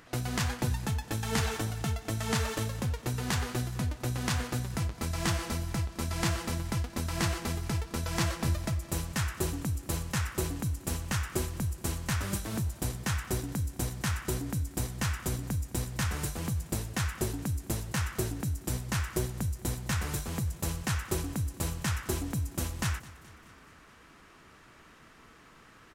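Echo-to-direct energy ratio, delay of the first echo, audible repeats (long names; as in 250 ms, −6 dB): −18.0 dB, 212 ms, 4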